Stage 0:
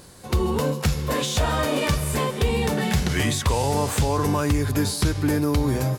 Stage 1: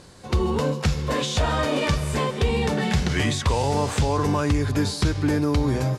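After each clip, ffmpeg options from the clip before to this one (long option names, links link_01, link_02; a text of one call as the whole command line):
ffmpeg -i in.wav -af "lowpass=6900" out.wav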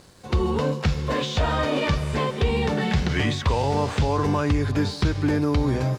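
ffmpeg -i in.wav -filter_complex "[0:a]acrossover=split=5300[link_01][link_02];[link_02]acompressor=threshold=-51dB:ratio=4:attack=1:release=60[link_03];[link_01][link_03]amix=inputs=2:normalize=0,aeval=exprs='sgn(val(0))*max(abs(val(0))-0.00188,0)':channel_layout=same" out.wav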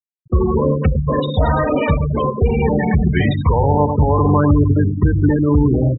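ffmpeg -i in.wav -af "aecho=1:1:102|204|306|408|510|612|714:0.398|0.231|0.134|0.0777|0.0451|0.0261|0.0152,afftfilt=real='re*gte(hypot(re,im),0.126)':imag='im*gte(hypot(re,im),0.126)':win_size=1024:overlap=0.75,aexciter=amount=8.7:drive=5.7:freq=4900,volume=7dB" out.wav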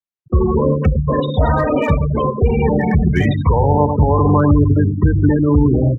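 ffmpeg -i in.wav -filter_complex "[0:a]lowpass=frequency=3400:poles=1,acrossover=split=180|590|1300[link_01][link_02][link_03][link_04];[link_04]volume=23.5dB,asoftclip=hard,volume=-23.5dB[link_05];[link_01][link_02][link_03][link_05]amix=inputs=4:normalize=0,volume=1dB" out.wav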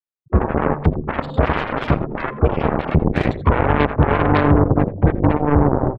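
ffmpeg -i in.wav -af "highshelf=frequency=2900:gain=-9.5,aeval=exprs='0.891*(cos(1*acos(clip(val(0)/0.891,-1,1)))-cos(1*PI/2))+0.224*(cos(7*acos(clip(val(0)/0.891,-1,1)))-cos(7*PI/2))':channel_layout=same,aecho=1:1:84:0.0944,volume=-2dB" out.wav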